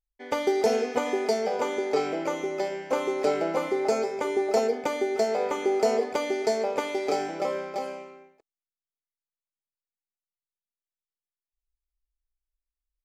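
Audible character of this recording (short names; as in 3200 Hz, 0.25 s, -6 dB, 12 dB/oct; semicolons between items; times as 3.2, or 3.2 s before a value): noise floor -95 dBFS; spectral tilt -3.5 dB/oct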